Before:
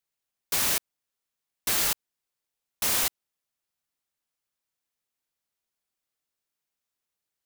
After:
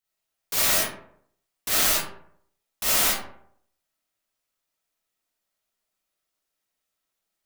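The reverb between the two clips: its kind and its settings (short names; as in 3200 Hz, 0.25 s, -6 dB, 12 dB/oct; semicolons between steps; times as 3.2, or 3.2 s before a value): digital reverb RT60 0.65 s, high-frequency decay 0.5×, pre-delay 5 ms, DRR -8 dB; gain -3 dB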